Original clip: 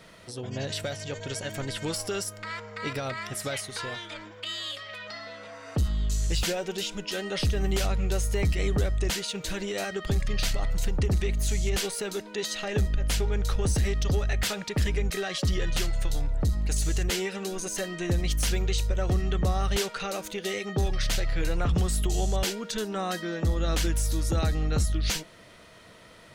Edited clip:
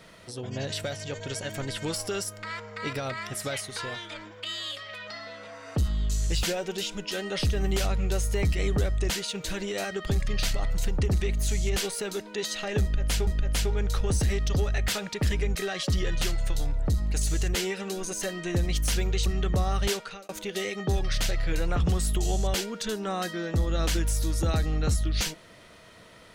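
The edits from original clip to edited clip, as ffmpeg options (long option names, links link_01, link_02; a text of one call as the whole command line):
ffmpeg -i in.wav -filter_complex "[0:a]asplit=4[link_01][link_02][link_03][link_04];[link_01]atrim=end=13.272[link_05];[link_02]atrim=start=12.818:end=18.812[link_06];[link_03]atrim=start=19.148:end=20.18,asetpts=PTS-STARTPTS,afade=type=out:start_time=0.652:duration=0.38[link_07];[link_04]atrim=start=20.18,asetpts=PTS-STARTPTS,afade=type=in:duration=0.004:curve=hsin[link_08];[link_05][link_06]acrossfade=duration=0.004:curve1=hsin:curve2=hsin[link_09];[link_07][link_08]concat=n=2:v=0:a=1[link_10];[link_09][link_10]acrossfade=duration=0.004:curve1=hsin:curve2=hsin" out.wav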